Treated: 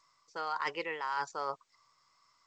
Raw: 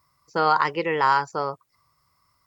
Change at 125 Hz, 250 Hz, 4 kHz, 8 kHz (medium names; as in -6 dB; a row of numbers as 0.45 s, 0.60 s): -22.5 dB, -17.0 dB, -10.5 dB, no reading